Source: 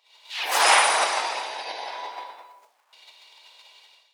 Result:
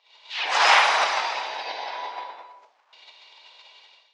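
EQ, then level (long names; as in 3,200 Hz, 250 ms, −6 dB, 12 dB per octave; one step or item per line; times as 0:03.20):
low-pass filter 6,800 Hz 24 dB per octave
dynamic equaliser 360 Hz, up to −7 dB, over −40 dBFS, Q 0.79
high-frequency loss of the air 80 metres
+3.0 dB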